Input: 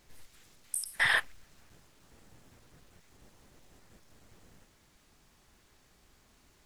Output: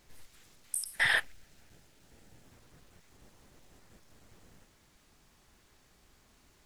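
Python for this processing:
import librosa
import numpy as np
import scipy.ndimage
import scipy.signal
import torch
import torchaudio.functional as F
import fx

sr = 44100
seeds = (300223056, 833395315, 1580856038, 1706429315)

y = fx.peak_eq(x, sr, hz=1100.0, db=-8.5, octaves=0.32, at=(0.96, 2.45))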